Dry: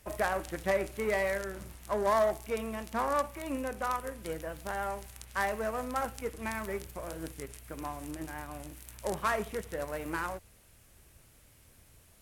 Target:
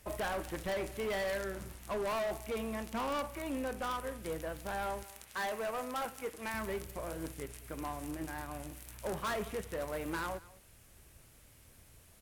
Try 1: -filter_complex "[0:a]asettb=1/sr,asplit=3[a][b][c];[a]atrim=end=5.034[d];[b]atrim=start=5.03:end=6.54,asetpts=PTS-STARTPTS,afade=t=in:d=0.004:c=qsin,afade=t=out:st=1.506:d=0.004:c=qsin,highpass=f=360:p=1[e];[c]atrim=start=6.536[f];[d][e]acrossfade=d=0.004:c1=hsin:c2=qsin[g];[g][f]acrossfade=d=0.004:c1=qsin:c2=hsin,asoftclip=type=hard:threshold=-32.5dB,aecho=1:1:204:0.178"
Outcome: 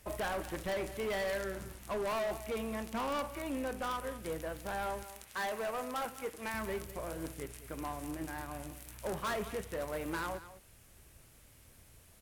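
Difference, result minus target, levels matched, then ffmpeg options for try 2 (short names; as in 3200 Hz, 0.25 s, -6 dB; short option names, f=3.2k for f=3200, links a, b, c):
echo-to-direct +6 dB
-filter_complex "[0:a]asettb=1/sr,asplit=3[a][b][c];[a]atrim=end=5.034[d];[b]atrim=start=5.03:end=6.54,asetpts=PTS-STARTPTS,afade=t=in:d=0.004:c=qsin,afade=t=out:st=1.506:d=0.004:c=qsin,highpass=f=360:p=1[e];[c]atrim=start=6.536[f];[d][e]acrossfade=d=0.004:c1=hsin:c2=qsin[g];[g][f]acrossfade=d=0.004:c1=qsin:c2=hsin,asoftclip=type=hard:threshold=-32.5dB,aecho=1:1:204:0.0891"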